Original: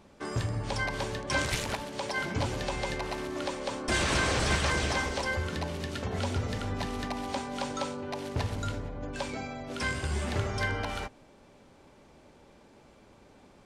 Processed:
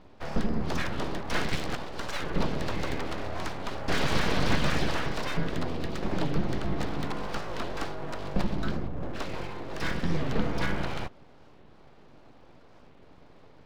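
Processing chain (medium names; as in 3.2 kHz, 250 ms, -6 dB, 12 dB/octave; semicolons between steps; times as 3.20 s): Chebyshev low-pass 4.5 kHz, order 3; bass shelf 400 Hz +8.5 dB; band-stop 490 Hz, Q 12; full-wave rectifier; warped record 45 rpm, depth 250 cents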